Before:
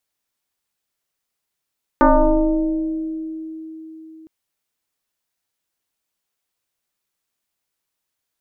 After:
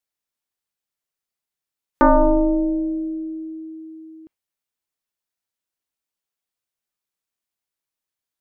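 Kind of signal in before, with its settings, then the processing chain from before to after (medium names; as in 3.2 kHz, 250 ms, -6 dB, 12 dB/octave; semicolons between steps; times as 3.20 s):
FM tone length 2.26 s, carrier 319 Hz, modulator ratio 0.92, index 3.4, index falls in 2.20 s exponential, decay 4.29 s, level -8 dB
spectral noise reduction 8 dB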